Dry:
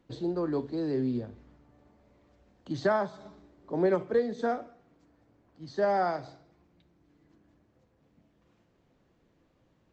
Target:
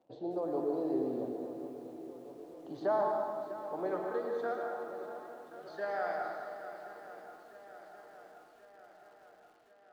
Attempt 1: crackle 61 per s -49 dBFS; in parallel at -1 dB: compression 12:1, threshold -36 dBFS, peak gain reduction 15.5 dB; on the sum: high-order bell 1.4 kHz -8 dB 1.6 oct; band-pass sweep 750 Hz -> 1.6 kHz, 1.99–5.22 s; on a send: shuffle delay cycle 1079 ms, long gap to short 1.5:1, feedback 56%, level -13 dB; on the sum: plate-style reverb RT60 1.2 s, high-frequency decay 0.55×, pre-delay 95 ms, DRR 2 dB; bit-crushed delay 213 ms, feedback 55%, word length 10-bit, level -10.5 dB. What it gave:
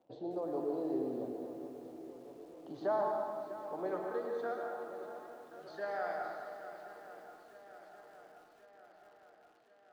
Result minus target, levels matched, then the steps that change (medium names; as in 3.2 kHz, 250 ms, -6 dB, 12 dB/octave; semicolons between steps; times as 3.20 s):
compression: peak gain reduction +9.5 dB
change: compression 12:1, threshold -25.5 dBFS, peak gain reduction 6 dB